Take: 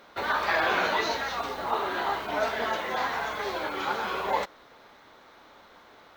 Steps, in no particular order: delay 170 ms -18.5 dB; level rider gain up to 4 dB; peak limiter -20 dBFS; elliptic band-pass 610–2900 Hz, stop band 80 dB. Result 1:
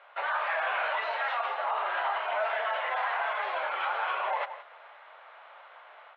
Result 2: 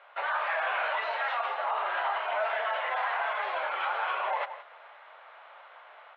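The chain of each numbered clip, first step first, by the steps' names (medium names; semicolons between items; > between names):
level rider > delay > peak limiter > elliptic band-pass; delay > level rider > peak limiter > elliptic band-pass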